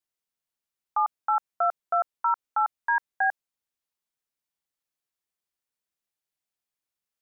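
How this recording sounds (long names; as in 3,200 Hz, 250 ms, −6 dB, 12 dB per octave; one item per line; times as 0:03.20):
background noise floor −90 dBFS
spectral slope −1.0 dB per octave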